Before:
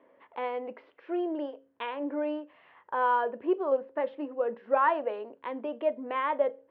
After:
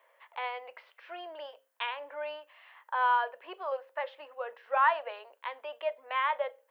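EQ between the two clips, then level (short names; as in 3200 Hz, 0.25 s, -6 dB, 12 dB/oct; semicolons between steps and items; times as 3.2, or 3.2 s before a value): HPF 580 Hz 24 dB/oct; tilt +4 dB/oct; 0.0 dB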